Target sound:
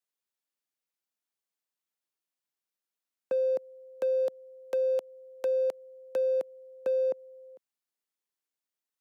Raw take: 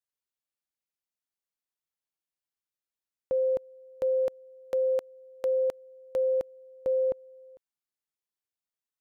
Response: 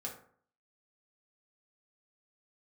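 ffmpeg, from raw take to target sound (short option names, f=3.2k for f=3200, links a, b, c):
-filter_complex "[0:a]acrossover=split=460|950[a][b][c];[a]acompressor=threshold=-37dB:ratio=4[d];[b]acompressor=threshold=-28dB:ratio=4[e];[c]acompressor=threshold=-48dB:ratio=4[f];[d][e][f]amix=inputs=3:normalize=0,asoftclip=type=hard:threshold=-24.5dB,highpass=f=180:w=0.5412,highpass=f=180:w=1.3066,volume=1dB"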